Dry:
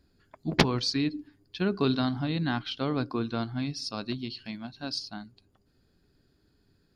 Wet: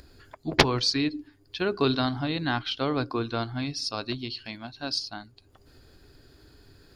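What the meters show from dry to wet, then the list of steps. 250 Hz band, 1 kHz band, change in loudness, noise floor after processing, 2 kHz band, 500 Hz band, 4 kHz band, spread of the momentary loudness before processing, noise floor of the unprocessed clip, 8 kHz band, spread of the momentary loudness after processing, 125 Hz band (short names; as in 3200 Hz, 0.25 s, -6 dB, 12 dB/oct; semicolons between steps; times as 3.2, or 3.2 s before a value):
-0.5 dB, +4.5 dB, +2.5 dB, -60 dBFS, +4.5 dB, +3.5 dB, +4.5 dB, 13 LU, -69 dBFS, +4.5 dB, 15 LU, -0.5 dB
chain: bell 190 Hz -12 dB 0.72 oct; upward compressor, threshold -47 dBFS; gain +4.5 dB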